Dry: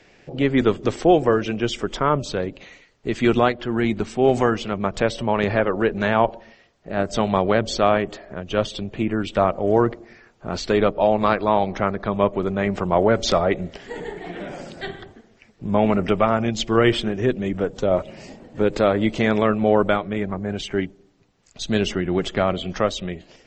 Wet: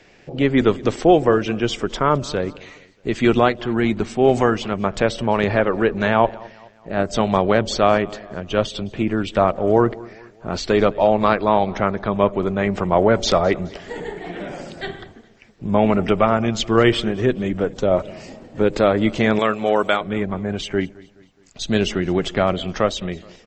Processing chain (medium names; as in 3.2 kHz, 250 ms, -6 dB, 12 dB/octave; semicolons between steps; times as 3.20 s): 19.39–20.01 s: RIAA curve recording; feedback delay 211 ms, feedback 46%, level -22.5 dB; trim +2 dB